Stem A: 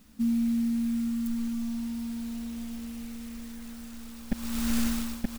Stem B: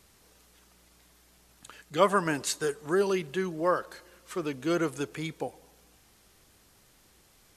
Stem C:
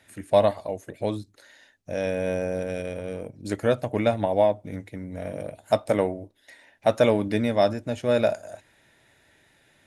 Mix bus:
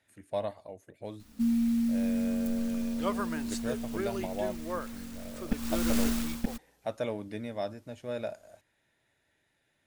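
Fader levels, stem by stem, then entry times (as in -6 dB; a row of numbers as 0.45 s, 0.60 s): -0.5 dB, -10.0 dB, -14.0 dB; 1.20 s, 1.05 s, 0.00 s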